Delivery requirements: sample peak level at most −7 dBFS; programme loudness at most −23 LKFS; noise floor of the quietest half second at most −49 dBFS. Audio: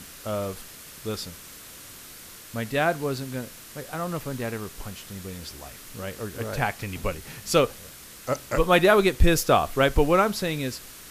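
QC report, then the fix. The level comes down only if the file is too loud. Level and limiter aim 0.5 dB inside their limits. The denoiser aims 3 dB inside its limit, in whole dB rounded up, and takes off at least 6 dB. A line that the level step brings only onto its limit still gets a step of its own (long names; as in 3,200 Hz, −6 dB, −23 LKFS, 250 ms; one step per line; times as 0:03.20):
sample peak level −6.0 dBFS: out of spec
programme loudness −25.0 LKFS: in spec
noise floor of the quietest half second −44 dBFS: out of spec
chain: broadband denoise 8 dB, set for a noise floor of −44 dBFS
brickwall limiter −7.5 dBFS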